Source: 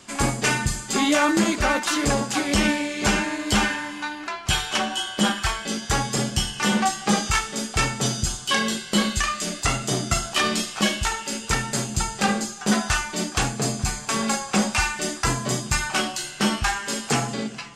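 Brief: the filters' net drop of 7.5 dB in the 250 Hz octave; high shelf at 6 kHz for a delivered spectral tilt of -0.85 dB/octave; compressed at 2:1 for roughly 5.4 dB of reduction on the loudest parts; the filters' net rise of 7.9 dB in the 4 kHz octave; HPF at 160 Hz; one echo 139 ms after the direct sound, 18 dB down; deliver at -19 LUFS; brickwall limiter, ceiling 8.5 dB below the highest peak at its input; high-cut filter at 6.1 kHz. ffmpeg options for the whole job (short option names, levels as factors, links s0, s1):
-af "highpass=160,lowpass=6100,equalizer=f=250:t=o:g=-8.5,equalizer=f=4000:t=o:g=8.5,highshelf=f=6000:g=8,acompressor=threshold=0.0631:ratio=2,alimiter=limit=0.158:level=0:latency=1,aecho=1:1:139:0.126,volume=2.24"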